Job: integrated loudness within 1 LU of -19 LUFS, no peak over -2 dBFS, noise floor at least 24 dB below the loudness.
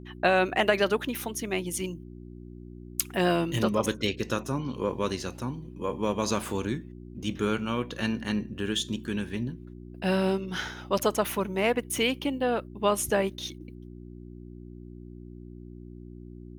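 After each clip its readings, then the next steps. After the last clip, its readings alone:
hum 60 Hz; harmonics up to 360 Hz; hum level -41 dBFS; loudness -29.0 LUFS; peak -6.5 dBFS; loudness target -19.0 LUFS
-> de-hum 60 Hz, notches 6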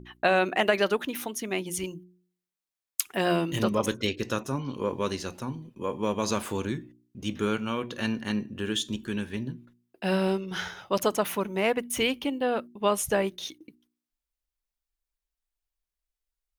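hum none; loudness -29.0 LUFS; peak -7.0 dBFS; loudness target -19.0 LUFS
-> gain +10 dB; limiter -2 dBFS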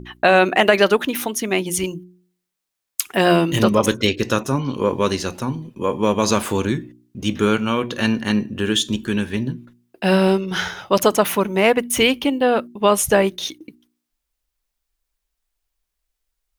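loudness -19.0 LUFS; peak -2.0 dBFS; noise floor -80 dBFS

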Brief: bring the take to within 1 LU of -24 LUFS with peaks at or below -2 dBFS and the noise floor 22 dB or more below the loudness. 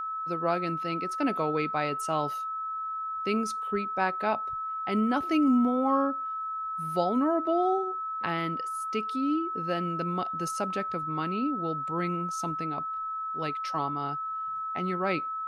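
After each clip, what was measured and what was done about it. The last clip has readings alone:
steady tone 1300 Hz; tone level -31 dBFS; loudness -29.5 LUFS; peak -13.5 dBFS; loudness target -24.0 LUFS
-> notch 1300 Hz, Q 30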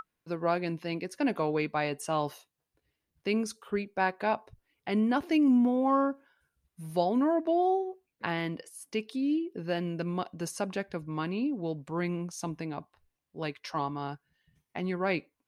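steady tone none; loudness -31.0 LUFS; peak -15.0 dBFS; loudness target -24.0 LUFS
-> gain +7 dB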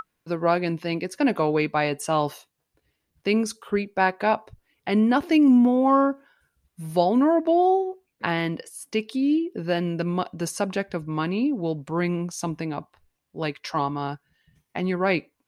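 loudness -24.0 LUFS; peak -8.0 dBFS; noise floor -78 dBFS

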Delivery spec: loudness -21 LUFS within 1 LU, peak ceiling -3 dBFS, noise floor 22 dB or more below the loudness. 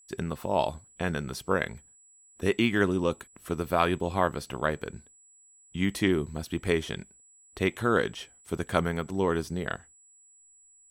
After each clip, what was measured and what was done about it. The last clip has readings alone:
steady tone 7800 Hz; tone level -56 dBFS; loudness -29.5 LUFS; peak -9.0 dBFS; loudness target -21.0 LUFS
-> notch 7800 Hz, Q 30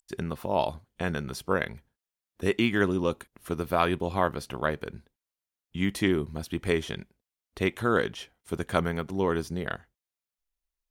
steady tone none; loudness -29.0 LUFS; peak -9.0 dBFS; loudness target -21.0 LUFS
-> gain +8 dB; limiter -3 dBFS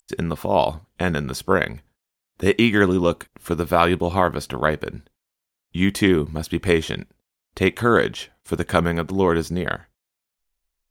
loudness -21.5 LUFS; peak -3.0 dBFS; noise floor -83 dBFS

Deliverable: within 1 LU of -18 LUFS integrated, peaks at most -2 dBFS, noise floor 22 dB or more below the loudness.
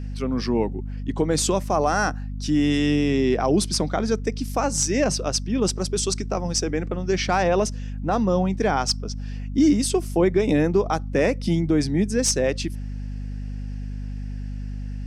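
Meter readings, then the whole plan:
hum 50 Hz; harmonics up to 250 Hz; hum level -28 dBFS; loudness -22.5 LUFS; peak -8.5 dBFS; loudness target -18.0 LUFS
-> notches 50/100/150/200/250 Hz; gain +4.5 dB

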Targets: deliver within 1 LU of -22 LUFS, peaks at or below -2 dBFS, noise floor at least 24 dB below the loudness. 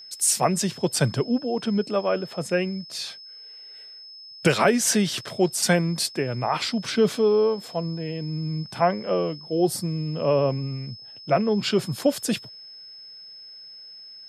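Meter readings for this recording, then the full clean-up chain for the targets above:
steady tone 5200 Hz; tone level -41 dBFS; loudness -24.0 LUFS; peak -6.5 dBFS; loudness target -22.0 LUFS
-> notch 5200 Hz, Q 30; gain +2 dB

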